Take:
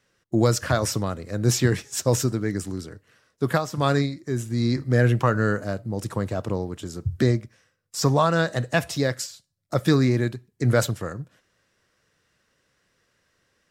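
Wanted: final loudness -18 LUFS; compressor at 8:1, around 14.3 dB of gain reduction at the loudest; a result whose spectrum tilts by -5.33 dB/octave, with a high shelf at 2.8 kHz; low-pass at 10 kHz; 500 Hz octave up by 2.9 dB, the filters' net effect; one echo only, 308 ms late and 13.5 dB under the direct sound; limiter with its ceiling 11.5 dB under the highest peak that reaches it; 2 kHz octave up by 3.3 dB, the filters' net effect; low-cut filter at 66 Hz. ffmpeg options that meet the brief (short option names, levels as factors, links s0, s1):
-af "highpass=66,lowpass=10000,equalizer=f=500:t=o:g=3.5,equalizer=f=2000:t=o:g=6,highshelf=f=2800:g=-5,acompressor=threshold=0.0398:ratio=8,alimiter=level_in=1.26:limit=0.0631:level=0:latency=1,volume=0.794,aecho=1:1:308:0.211,volume=9.44"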